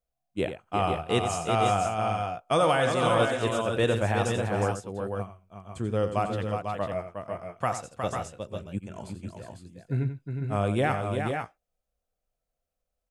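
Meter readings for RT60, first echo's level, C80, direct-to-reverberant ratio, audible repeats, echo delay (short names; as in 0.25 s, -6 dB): none, -10.0 dB, none, none, 3, 88 ms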